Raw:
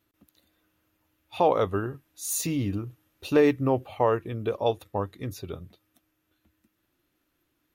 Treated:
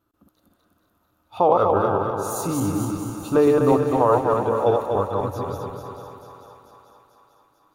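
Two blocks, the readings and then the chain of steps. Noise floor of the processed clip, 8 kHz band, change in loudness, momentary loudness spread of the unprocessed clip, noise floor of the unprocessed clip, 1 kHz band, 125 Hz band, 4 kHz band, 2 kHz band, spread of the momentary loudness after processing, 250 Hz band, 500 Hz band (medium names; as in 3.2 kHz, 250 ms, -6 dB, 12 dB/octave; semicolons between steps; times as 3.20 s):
-68 dBFS, -1.0 dB, +6.0 dB, 18 LU, -76 dBFS, +8.5 dB, +4.5 dB, -2.0 dB, +1.0 dB, 13 LU, +5.5 dB, +6.5 dB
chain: backward echo that repeats 124 ms, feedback 69%, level -2 dB; resonant high shelf 1.6 kHz -6.5 dB, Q 3; thinning echo 442 ms, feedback 61%, high-pass 550 Hz, level -9 dB; trim +2 dB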